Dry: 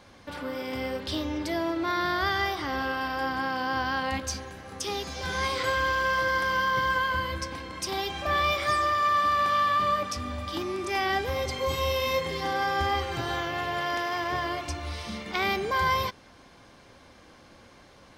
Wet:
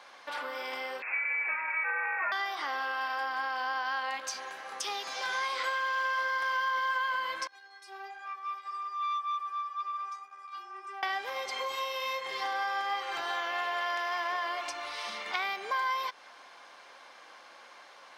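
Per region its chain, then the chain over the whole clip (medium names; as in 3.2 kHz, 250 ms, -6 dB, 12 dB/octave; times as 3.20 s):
1.02–2.32 s: comb filter that takes the minimum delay 6.7 ms + frequency inversion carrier 2.6 kHz
7.47–11.03 s: compression 4:1, threshold -31 dBFS + inharmonic resonator 390 Hz, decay 0.3 s, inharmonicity 0.002 + transformer saturation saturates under 1.3 kHz
whole clip: compression, threshold -32 dBFS; Chebyshev high-pass 890 Hz, order 2; treble shelf 6.1 kHz -8 dB; trim +5 dB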